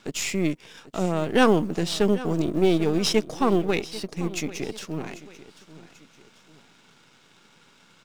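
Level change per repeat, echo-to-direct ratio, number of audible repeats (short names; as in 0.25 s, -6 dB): -7.5 dB, -16.5 dB, 2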